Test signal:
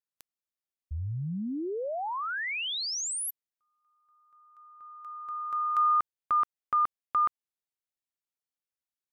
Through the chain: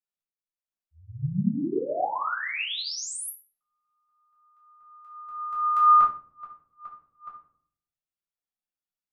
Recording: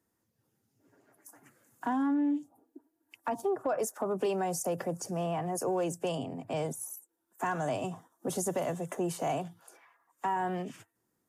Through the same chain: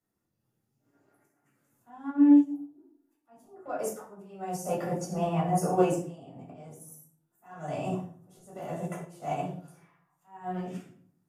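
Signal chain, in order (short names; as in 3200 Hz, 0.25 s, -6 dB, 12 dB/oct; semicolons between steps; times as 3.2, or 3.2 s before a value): auto swell 0.491 s; shoebox room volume 860 m³, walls furnished, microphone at 6.8 m; upward expander 1.5:1, over -36 dBFS; gain -1 dB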